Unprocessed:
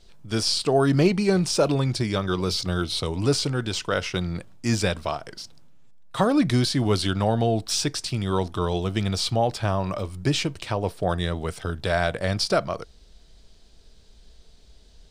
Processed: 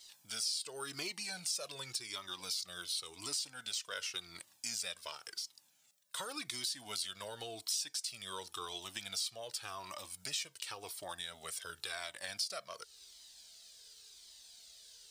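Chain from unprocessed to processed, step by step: differentiator; compression 2.5:1, threshold -53 dBFS, peak gain reduction 19 dB; Shepard-style flanger falling 0.91 Hz; trim +13.5 dB

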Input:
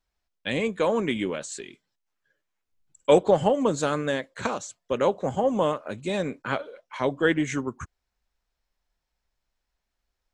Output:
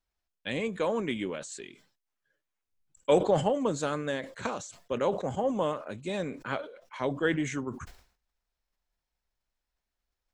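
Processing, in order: decay stretcher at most 120 dB/s; trim -5.5 dB

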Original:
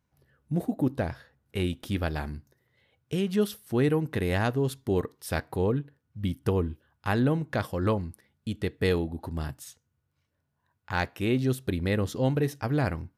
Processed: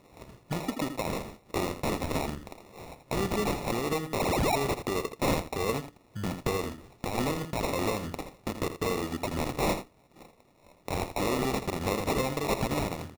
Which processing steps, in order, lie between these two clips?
rattle on loud lows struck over -25 dBFS, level -27 dBFS; peaking EQ 5.1 kHz +12.5 dB 0.39 oct; compression 12:1, threshold -36 dBFS, peak gain reduction 17.5 dB; resonant high shelf 2.7 kHz +11 dB, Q 1.5; painted sound fall, 4.19–4.56 s, 620–6100 Hz -37 dBFS; overdrive pedal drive 21 dB, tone 3.3 kHz, clips at -11.5 dBFS; sample-and-hold 28×; peak limiter -24 dBFS, peak gain reduction 8 dB; delay 82 ms -10 dB; random flutter of the level, depth 60%; trim +6 dB

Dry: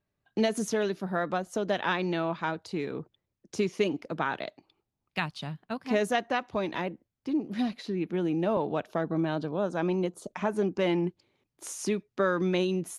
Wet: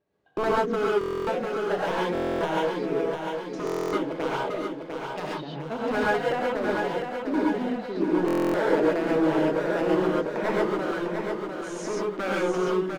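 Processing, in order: low-pass 5.9 kHz 12 dB/octave; low-pass that closes with the level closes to 2.1 kHz, closed at -28 dBFS; high-pass 120 Hz 6 dB/octave; peaking EQ 440 Hz +11.5 dB 1.7 oct; in parallel at +1 dB: compression, threshold -35 dBFS, peak gain reduction 21.5 dB; on the sum: wavefolder -15 dBFS; random-step tremolo; on a send: feedback delay 700 ms, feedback 52%, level -5.5 dB; on the sum: gated-style reverb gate 160 ms rising, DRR -4.5 dB; buffer glitch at 0.99/2.13/3.65/8.26 s, samples 1024, times 11; trim -6.5 dB

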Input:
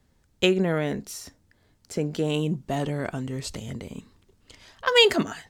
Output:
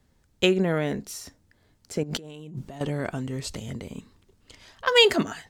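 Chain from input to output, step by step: 2.03–2.81 s: compressor with a negative ratio -38 dBFS, ratio -1

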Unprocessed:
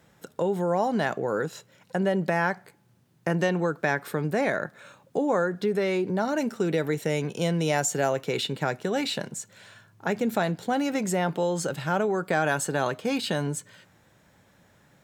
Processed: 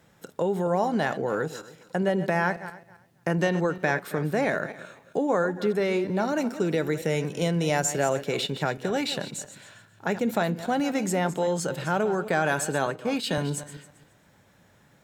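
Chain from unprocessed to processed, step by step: backward echo that repeats 135 ms, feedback 41%, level -12.5 dB; 12.86–13.38 s: three bands expanded up and down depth 70%

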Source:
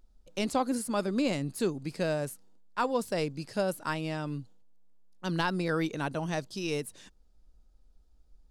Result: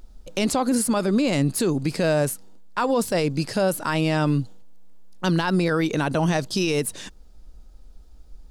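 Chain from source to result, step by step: in parallel at +3 dB: gain riding within 4 dB 0.5 s; on the sum: peak limiter -20 dBFS, peak gain reduction 11 dB; trim +6.5 dB

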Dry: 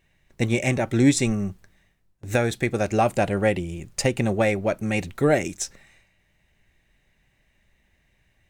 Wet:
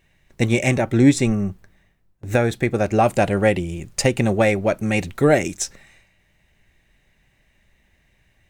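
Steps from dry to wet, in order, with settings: 0.81–3.04 s: peaking EQ 7.5 kHz -6 dB 2.9 oct; trim +4 dB

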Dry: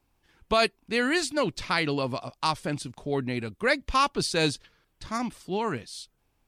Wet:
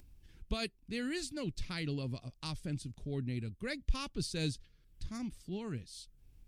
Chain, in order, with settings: amplifier tone stack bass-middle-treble 10-0-1; in parallel at +1.5 dB: upward compressor, threshold -49 dBFS; on the sum: trim +3 dB

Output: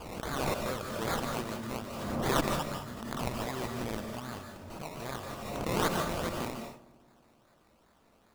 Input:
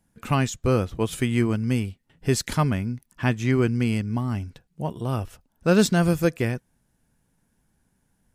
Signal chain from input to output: pre-emphasis filter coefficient 0.97; de-hum 69.28 Hz, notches 30; in parallel at +2 dB: compression, threshold -48 dBFS, peak gain reduction 21.5 dB; on the sum: one-sided clip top -31 dBFS; decimation with a swept rate 22×, swing 60% 2.5 Hz; filtered feedback delay 61 ms, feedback 83%, low-pass 2.1 kHz, level -20 dB; on a send at -4 dB: reverberation, pre-delay 141 ms; on the sum: swell ahead of each attack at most 33 dB/s; trim +2.5 dB

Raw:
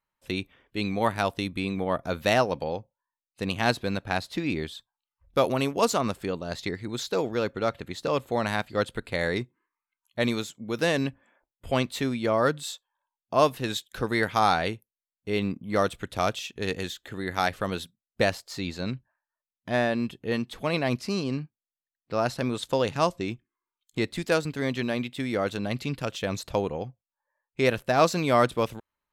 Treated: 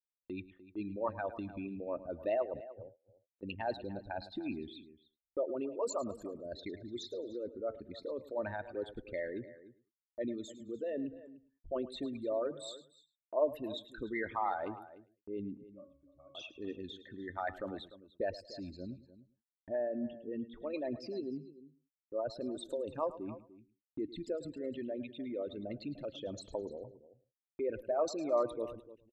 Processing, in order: resonances exaggerated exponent 3; 19.75–20.69 s: low-pass 2.8 kHz 24 dB/octave; on a send: feedback delay 107 ms, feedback 23%, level -16 dB; on the sum: flange 0.32 Hz, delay 1.2 ms, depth 3.5 ms, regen +80%; gate -52 dBFS, range -38 dB; comb 3.3 ms, depth 36%; 2.55–3.43 s: compressor with a negative ratio -44 dBFS, ratio -0.5; 15.64–16.35 s: pitch-class resonator C#, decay 0.53 s; echo from a far wall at 51 m, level -16 dB; trim -7.5 dB

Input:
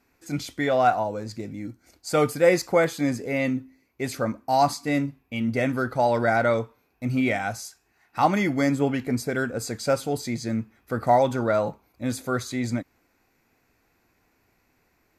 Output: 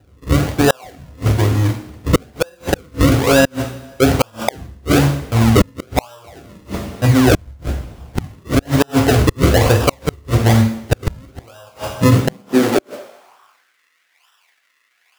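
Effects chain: companding laws mixed up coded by A; on a send: flutter echo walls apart 8.4 m, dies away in 0.33 s; on the sum: compression 16:1, threshold -23 dBFS, peak gain reduction 12.5 dB; FFT filter 110 Hz 0 dB, 170 Hz -12 dB, 1.1 kHz +12 dB, 2.6 kHz -20 dB, 11 kHz +4 dB; decimation with a swept rate 39×, swing 100% 1.1 Hz; two-slope reverb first 0.53 s, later 1.7 s, from -18 dB, DRR 3 dB; high-pass sweep 66 Hz -> 1.9 kHz, 11.79–13.76 s; inverted gate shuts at -16 dBFS, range -37 dB; bass shelf 100 Hz +7.5 dB; loudness maximiser +18 dB; trim -1 dB

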